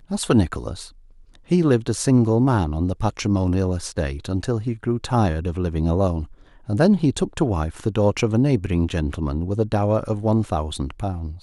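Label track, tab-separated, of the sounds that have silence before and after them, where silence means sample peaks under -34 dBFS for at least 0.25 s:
1.350000	6.250000	sound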